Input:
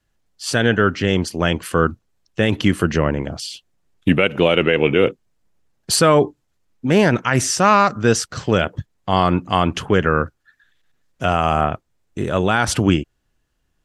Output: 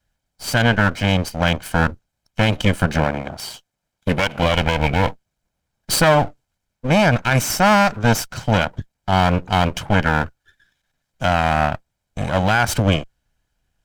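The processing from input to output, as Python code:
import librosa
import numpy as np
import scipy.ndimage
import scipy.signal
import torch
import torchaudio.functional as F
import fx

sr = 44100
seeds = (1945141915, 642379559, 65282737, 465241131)

y = fx.lower_of_two(x, sr, delay_ms=1.3)
y = fx.low_shelf(y, sr, hz=150.0, db=-7.5, at=(3.04, 4.43))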